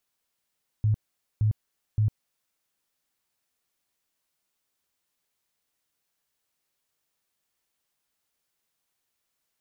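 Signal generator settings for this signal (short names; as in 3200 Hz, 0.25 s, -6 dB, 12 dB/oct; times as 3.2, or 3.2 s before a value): tone bursts 107 Hz, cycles 11, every 0.57 s, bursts 3, -19 dBFS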